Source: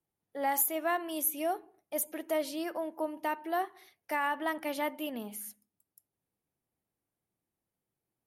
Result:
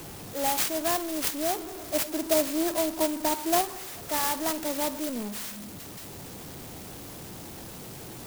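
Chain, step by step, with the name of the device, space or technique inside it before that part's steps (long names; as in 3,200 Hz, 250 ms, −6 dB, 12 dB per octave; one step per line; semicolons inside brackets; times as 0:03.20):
0:01.58–0:03.61: comb filter 3 ms, depth 89%
early CD player with a faulty converter (converter with a step at zero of −35.5 dBFS; converter with an unsteady clock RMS 0.13 ms)
level +2 dB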